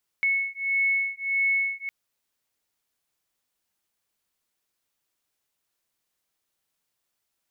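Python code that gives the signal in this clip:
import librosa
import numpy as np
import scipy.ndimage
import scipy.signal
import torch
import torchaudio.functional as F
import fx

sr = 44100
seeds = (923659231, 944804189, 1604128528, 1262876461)

y = fx.two_tone_beats(sr, length_s=1.66, hz=2200.0, beat_hz=1.6, level_db=-25.5)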